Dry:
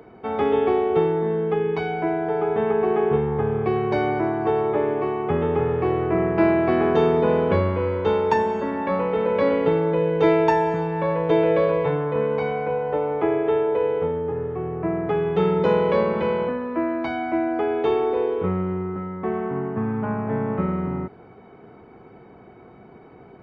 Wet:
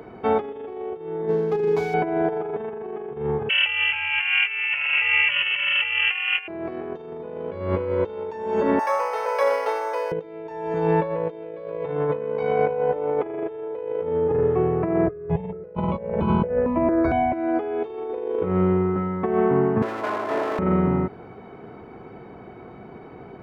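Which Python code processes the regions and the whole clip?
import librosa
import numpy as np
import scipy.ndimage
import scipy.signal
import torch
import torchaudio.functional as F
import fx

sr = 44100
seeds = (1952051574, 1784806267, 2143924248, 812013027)

y = fx.chain(x, sr, fx.median_filter(points=15),
    fx.comb_fb(f0_hz=140.0, decay_s=0.32, harmonics='all', damping=0.0, mix_pct=60), at=(1.28, 1.94))
y = fx.chain(y, sr, fx.peak_eq(hz=1400.0, db=7.5, octaves=2.0),
    fx.hum_notches(base_hz=60, count=10),
    fx.freq_invert(carrier_hz=3100), at=(3.49, 6.48))
y = fx.chain(y, sr, fx.highpass(hz=660.0, slope=24),
    fx.air_absorb(metres=76.0),
    fx.resample_linear(factor=6), at=(8.79, 10.12))
y = fx.chain(y, sr, fx.tilt_eq(slope=-3.5),
    fx.phaser_held(hz=4.4, low_hz=830.0, high_hz=1900.0), at=(15.07, 17.33))
y = fx.chain(y, sr, fx.lower_of_two(delay_ms=2.9),
    fx.highpass(hz=380.0, slope=12), at=(19.82, 20.59))
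y = fx.dynamic_eq(y, sr, hz=470.0, q=1.1, threshold_db=-30.0, ratio=4.0, max_db=5)
y = fx.over_compress(y, sr, threshold_db=-23.0, ratio=-0.5)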